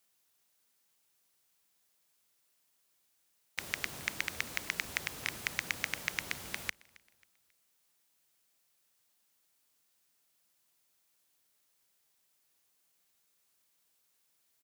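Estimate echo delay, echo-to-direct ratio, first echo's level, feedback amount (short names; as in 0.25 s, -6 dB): 0.27 s, -23.5 dB, -24.0 dB, 40%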